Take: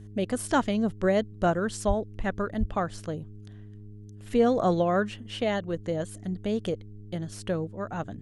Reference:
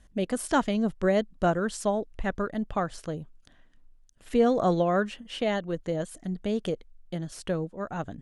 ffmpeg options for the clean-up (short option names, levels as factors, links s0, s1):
-filter_complex "[0:a]bandreject=f=103.7:t=h:w=4,bandreject=f=207.4:t=h:w=4,bandreject=f=311.1:t=h:w=4,bandreject=f=414.8:t=h:w=4,asplit=3[s0][s1][s2];[s0]afade=t=out:st=1.87:d=0.02[s3];[s1]highpass=f=140:w=0.5412,highpass=f=140:w=1.3066,afade=t=in:st=1.87:d=0.02,afade=t=out:st=1.99:d=0.02[s4];[s2]afade=t=in:st=1.99:d=0.02[s5];[s3][s4][s5]amix=inputs=3:normalize=0,asplit=3[s6][s7][s8];[s6]afade=t=out:st=2.59:d=0.02[s9];[s7]highpass=f=140:w=0.5412,highpass=f=140:w=1.3066,afade=t=in:st=2.59:d=0.02,afade=t=out:st=2.71:d=0.02[s10];[s8]afade=t=in:st=2.71:d=0.02[s11];[s9][s10][s11]amix=inputs=3:normalize=0"